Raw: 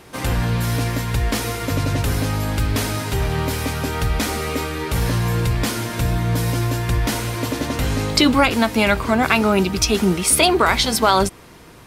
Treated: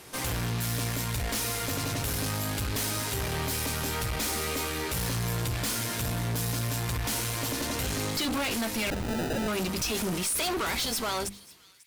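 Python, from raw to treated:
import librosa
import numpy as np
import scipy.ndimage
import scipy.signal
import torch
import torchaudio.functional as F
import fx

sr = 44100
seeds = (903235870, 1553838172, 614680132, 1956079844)

p1 = fx.fade_out_tail(x, sr, length_s=1.32)
p2 = scipy.signal.sosfilt(scipy.signal.butter(2, 50.0, 'highpass', fs=sr, output='sos'), p1)
p3 = fx.high_shelf(p2, sr, hz=3700.0, db=10.0)
p4 = fx.hum_notches(p3, sr, base_hz=50, count=7)
p5 = fx.tube_stage(p4, sr, drive_db=25.0, bias=0.65)
p6 = fx.sample_hold(p5, sr, seeds[0], rate_hz=1100.0, jitter_pct=0, at=(8.9, 9.48))
p7 = p6 + fx.echo_wet_highpass(p6, sr, ms=543, feedback_pct=37, hz=2400.0, wet_db=-21, dry=0)
y = F.gain(torch.from_numpy(p7), -2.5).numpy()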